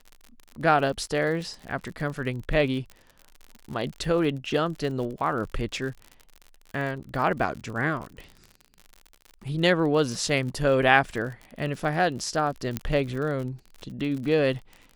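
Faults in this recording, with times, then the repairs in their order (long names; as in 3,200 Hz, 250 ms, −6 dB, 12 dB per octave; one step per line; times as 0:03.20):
surface crackle 57 per second −34 dBFS
0:12.77: click −12 dBFS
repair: click removal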